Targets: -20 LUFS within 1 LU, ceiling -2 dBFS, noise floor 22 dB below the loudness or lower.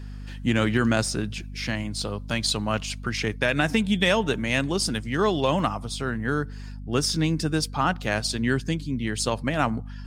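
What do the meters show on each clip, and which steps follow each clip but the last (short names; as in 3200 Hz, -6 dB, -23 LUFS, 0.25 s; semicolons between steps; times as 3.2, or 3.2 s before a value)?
hum 50 Hz; harmonics up to 250 Hz; hum level -34 dBFS; loudness -25.5 LUFS; peak -8.5 dBFS; loudness target -20.0 LUFS
-> notches 50/100/150/200/250 Hz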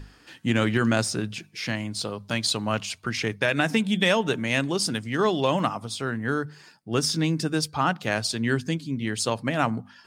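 hum none; loudness -25.5 LUFS; peak -8.0 dBFS; loudness target -20.0 LUFS
-> gain +5.5 dB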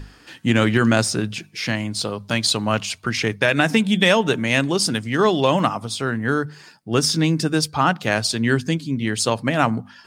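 loudness -20.0 LUFS; peak -2.5 dBFS; noise floor -49 dBFS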